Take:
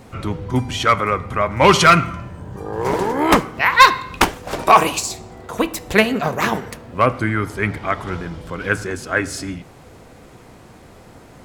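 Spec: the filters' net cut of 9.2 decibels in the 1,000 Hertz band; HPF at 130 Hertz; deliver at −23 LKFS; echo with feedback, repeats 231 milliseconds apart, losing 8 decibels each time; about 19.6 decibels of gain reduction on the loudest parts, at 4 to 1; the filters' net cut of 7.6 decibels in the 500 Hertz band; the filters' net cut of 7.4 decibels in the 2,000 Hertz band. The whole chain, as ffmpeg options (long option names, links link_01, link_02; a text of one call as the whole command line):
ffmpeg -i in.wav -af "highpass=130,equalizer=frequency=500:width_type=o:gain=-7.5,equalizer=frequency=1000:width_type=o:gain=-7.5,equalizer=frequency=2000:width_type=o:gain=-6.5,acompressor=threshold=-38dB:ratio=4,aecho=1:1:231|462|693|924|1155:0.398|0.159|0.0637|0.0255|0.0102,volume=16dB" out.wav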